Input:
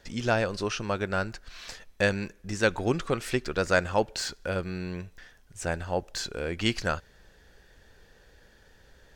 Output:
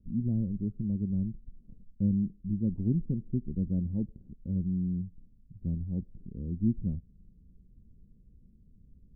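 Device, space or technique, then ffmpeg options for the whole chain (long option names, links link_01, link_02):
the neighbour's flat through the wall: -af "lowpass=frequency=240:width=0.5412,lowpass=frequency=240:width=1.3066,equalizer=frequency=200:width_type=o:width=0.74:gain=6,volume=1.5dB"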